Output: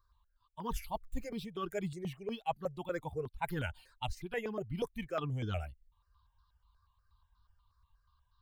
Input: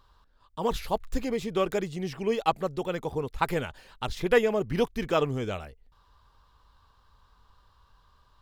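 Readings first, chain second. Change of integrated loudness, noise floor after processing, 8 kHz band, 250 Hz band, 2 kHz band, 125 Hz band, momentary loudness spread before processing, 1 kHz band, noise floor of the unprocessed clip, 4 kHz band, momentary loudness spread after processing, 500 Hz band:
−10.5 dB, −76 dBFS, −9.0 dB, −9.5 dB, −10.0 dB, −4.5 dB, 12 LU, −9.5 dB, −63 dBFS, −10.0 dB, 5 LU, −12.5 dB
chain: spectral dynamics exaggerated over time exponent 1.5
reversed playback
downward compressor 6 to 1, threshold −41 dBFS, peak gain reduction 21.5 dB
reversed playback
step-sequenced phaser 8.3 Hz 800–2,300 Hz
level +9.5 dB

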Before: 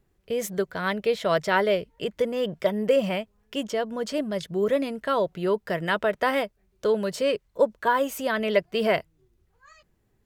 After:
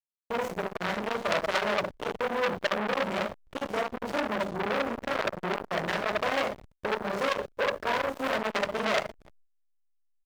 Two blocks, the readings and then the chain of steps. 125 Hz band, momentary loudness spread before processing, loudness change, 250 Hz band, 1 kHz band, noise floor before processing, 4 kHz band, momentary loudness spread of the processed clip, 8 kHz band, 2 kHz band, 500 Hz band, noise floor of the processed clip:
−5.0 dB, 7 LU, −4.0 dB, −6.0 dB, −1.5 dB, −69 dBFS, −1.0 dB, 6 LU, −5.0 dB, −0.5 dB, −6.5 dB, −70 dBFS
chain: downward compressor 3 to 1, threshold −30 dBFS, peak gain reduction 11.5 dB
parametric band 2,100 Hz +7.5 dB 0.23 octaves
mains-hum notches 50/100/150/200 Hz
far-end echo of a speakerphone 300 ms, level −14 dB
four-comb reverb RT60 0.48 s, combs from 30 ms, DRR −1 dB
mains hum 60 Hz, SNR 32 dB
thirty-one-band graphic EQ 125 Hz +7 dB, 630 Hz +6 dB, 10,000 Hz −8 dB
floating-point word with a short mantissa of 4 bits
slack as between gear wheels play −26 dBFS
noise gate with hold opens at −45 dBFS
saturating transformer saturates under 3,600 Hz
level +4 dB

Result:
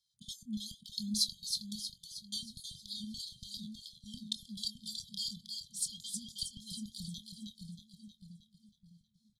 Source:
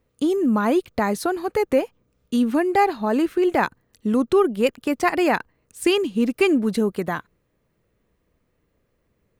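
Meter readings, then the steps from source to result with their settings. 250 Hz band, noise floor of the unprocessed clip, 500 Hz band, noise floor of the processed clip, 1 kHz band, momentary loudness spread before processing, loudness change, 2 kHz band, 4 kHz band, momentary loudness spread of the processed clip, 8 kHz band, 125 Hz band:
−24.0 dB, −70 dBFS, below −40 dB, −76 dBFS, below −40 dB, 7 LU, −18.0 dB, below −40 dB, −2.5 dB, 14 LU, −1.0 dB, −14.0 dB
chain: graphic EQ with 15 bands 160 Hz +5 dB, 1,000 Hz −9 dB, 10,000 Hz +5 dB
downward compressor, threshold −18 dBFS, peak gain reduction 5.5 dB
soft clipping −12.5 dBFS, distortion −25 dB
auto-filter band-pass square 3.5 Hz 870–4,500 Hz
linear-phase brick-wall band-stop 220–3,100 Hz
double-tracking delay 24 ms −12 dB
on a send: echo with a time of its own for lows and highs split 1,000 Hz, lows 610 ms, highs 316 ms, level −5.5 dB
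on the sum: flanger whose copies keep moving one way falling 0.3 Hz
level +12.5 dB

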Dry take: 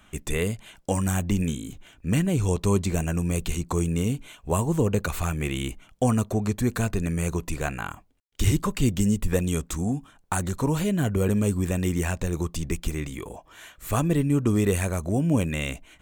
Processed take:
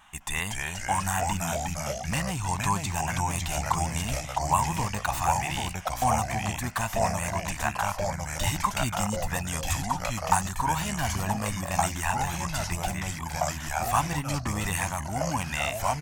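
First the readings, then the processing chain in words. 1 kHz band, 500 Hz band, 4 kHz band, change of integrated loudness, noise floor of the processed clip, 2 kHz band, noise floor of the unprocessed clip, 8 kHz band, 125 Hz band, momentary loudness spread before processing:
+9.0 dB, −5.0 dB, +3.5 dB, −2.5 dB, −37 dBFS, +4.0 dB, −57 dBFS, +3.5 dB, −5.5 dB, 10 LU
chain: comb filter 1.1 ms, depth 35%
pitch vibrato 0.37 Hz 5.7 cents
low shelf with overshoot 630 Hz −10 dB, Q 3
delay with pitch and tempo change per echo 205 ms, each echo −2 semitones, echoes 3

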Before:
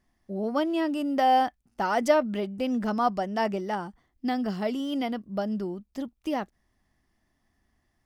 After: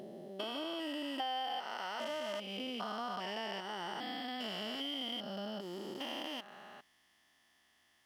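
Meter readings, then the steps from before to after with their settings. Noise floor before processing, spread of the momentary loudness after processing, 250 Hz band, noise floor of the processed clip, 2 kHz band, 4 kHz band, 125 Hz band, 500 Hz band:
−74 dBFS, 6 LU, −15.5 dB, −71 dBFS, −8.5 dB, +2.0 dB, −15.0 dB, −14.0 dB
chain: spectrum averaged block by block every 400 ms
high-pass filter 1,300 Hz 6 dB per octave
parametric band 3,100 Hz +11 dB 0.35 octaves
downward compressor 5 to 1, threshold −47 dBFS, peak gain reduction 17 dB
level +9 dB

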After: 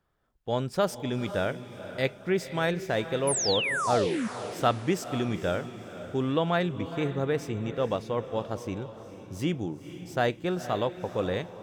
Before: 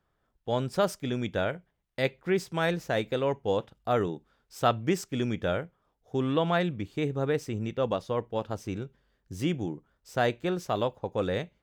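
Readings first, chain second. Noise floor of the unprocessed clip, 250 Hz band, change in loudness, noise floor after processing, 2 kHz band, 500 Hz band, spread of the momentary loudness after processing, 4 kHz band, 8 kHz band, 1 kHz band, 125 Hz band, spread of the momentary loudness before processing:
−76 dBFS, +0.5 dB, +1.0 dB, −47 dBFS, +2.0 dB, +0.5 dB, 11 LU, +4.0 dB, +10.5 dB, +1.0 dB, +0.5 dB, 10 LU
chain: sound drawn into the spectrogram fall, 0:03.27–0:04.28, 200–11,000 Hz −29 dBFS
on a send: feedback delay with all-pass diffusion 486 ms, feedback 42%, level −12 dB

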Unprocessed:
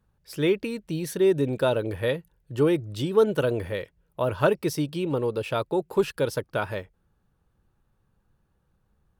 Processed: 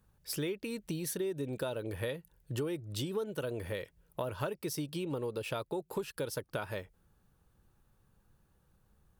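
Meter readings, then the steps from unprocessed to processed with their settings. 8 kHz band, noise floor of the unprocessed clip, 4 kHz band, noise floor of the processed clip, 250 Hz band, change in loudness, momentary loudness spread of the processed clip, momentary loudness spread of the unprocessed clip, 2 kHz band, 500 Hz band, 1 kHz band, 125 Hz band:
−1.5 dB, −71 dBFS, −7.0 dB, −71 dBFS, −11.5 dB, −12.0 dB, 5 LU, 11 LU, −10.5 dB, −13.0 dB, −12.0 dB, −9.5 dB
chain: high-shelf EQ 5,400 Hz +9 dB
downward compressor 6 to 1, threshold −34 dBFS, peak gain reduction 18 dB

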